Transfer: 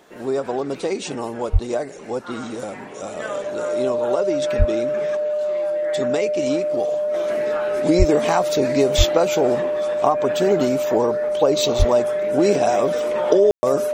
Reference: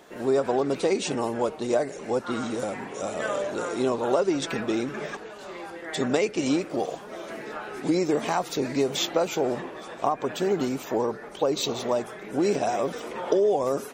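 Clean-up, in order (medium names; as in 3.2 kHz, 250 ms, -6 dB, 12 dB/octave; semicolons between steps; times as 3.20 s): band-stop 600 Hz, Q 30; de-plosive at 1.52/4.58/7.98/8.97/11.78 s; room tone fill 13.51–13.63 s; gain correction -6 dB, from 7.14 s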